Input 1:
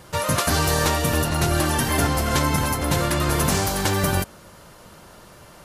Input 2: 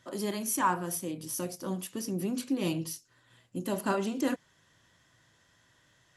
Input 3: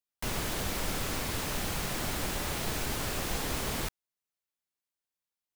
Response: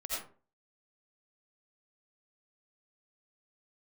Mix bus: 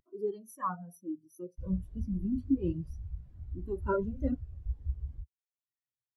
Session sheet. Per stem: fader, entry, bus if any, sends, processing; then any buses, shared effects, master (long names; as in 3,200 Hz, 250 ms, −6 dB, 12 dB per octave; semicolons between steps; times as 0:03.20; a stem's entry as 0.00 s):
muted
+3.0 dB, 0.00 s, no send, flanger whose copies keep moving one way rising 0.85 Hz
−8.5 dB, 1.35 s, no send, parametric band 67 Hz +14 dB 1.4 octaves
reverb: not used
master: upward compression, threshold −49 dBFS; every bin expanded away from the loudest bin 2.5 to 1